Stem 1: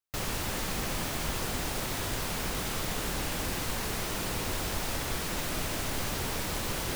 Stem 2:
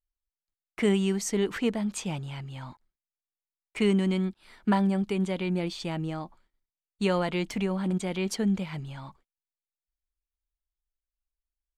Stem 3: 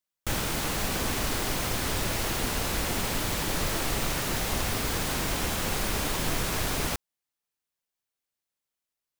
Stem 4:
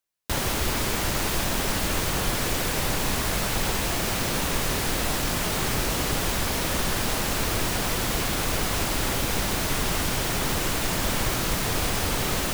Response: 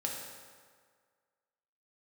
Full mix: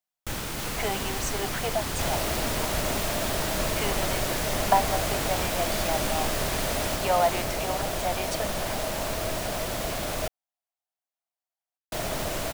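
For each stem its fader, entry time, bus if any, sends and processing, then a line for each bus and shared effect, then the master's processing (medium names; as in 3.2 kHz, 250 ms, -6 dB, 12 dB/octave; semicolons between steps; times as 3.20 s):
-4.0 dB, 0.45 s, no send, none
-1.5 dB, 0.00 s, no send, resonant high-pass 710 Hz, resonance Q 6
-3.5 dB, 0.00 s, no send, none
-6.0 dB, 1.70 s, muted 10.28–11.92 s, no send, peaking EQ 630 Hz +13 dB 0.36 oct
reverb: none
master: none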